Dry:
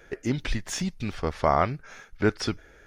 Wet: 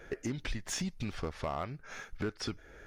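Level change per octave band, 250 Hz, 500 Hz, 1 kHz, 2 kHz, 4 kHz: −9.0, −12.0, −14.5, −9.0, −6.0 decibels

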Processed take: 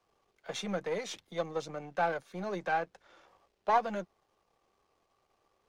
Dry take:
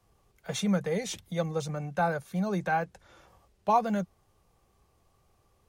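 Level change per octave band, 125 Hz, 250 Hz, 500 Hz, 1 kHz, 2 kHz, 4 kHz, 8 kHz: −13.0, −10.5, −3.0, −3.0, −2.0, −3.0, −7.5 decibels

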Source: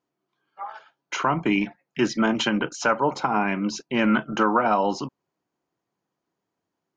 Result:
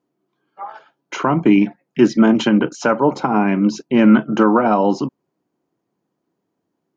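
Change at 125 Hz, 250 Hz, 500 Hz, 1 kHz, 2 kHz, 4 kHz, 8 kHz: +9.5 dB, +10.5 dB, +8.0 dB, +3.5 dB, +1.5 dB, +0.5 dB, can't be measured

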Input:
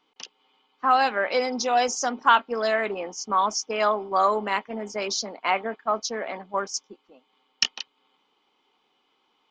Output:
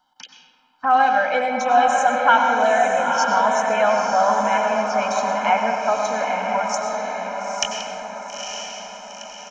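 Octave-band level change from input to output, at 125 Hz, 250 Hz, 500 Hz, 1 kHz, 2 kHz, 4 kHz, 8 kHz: can't be measured, +5.0 dB, +6.5 dB, +7.0 dB, +6.5 dB, 0.0 dB, +2.0 dB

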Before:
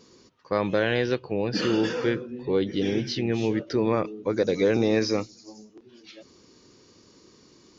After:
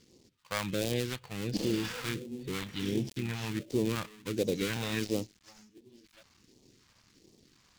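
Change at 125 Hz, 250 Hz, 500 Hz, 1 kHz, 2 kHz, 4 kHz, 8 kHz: −4.5 dB, −8.0 dB, −11.5 dB, −9.0 dB, −7.0 dB, −4.5 dB, can't be measured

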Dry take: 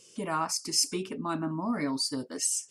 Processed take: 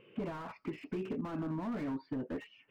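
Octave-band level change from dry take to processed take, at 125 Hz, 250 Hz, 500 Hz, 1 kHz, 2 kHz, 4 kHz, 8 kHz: −3.0 dB, −4.5 dB, −4.5 dB, −12.0 dB, −8.5 dB, −26.0 dB, below −40 dB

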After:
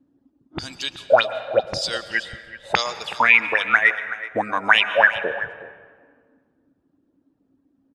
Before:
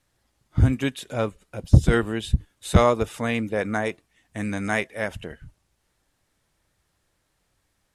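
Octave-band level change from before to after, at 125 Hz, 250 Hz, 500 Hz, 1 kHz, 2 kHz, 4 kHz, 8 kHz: −20.5, −11.5, +2.5, +7.0, +13.5, +12.0, +0.5 decibels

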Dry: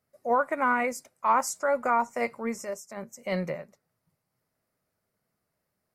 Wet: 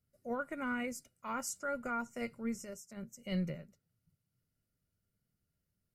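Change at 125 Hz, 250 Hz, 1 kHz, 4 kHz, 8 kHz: −1.5, −3.5, −16.5, −5.0, −7.0 decibels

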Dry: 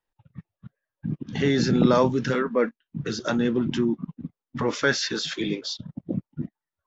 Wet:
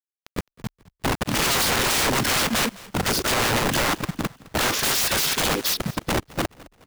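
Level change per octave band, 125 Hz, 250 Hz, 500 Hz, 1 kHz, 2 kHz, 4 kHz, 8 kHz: −0.5 dB, −4.0 dB, −2.5 dB, +6.5 dB, +6.5 dB, +9.0 dB, can't be measured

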